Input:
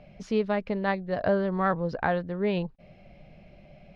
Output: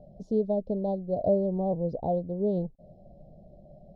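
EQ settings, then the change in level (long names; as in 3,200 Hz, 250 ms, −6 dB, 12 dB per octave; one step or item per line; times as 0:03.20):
elliptic band-stop filter 660–3,600 Hz, stop band 60 dB
high shelf with overshoot 1,700 Hz −14 dB, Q 3
dynamic equaliser 1,300 Hz, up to −3 dB, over −41 dBFS, Q 1
0.0 dB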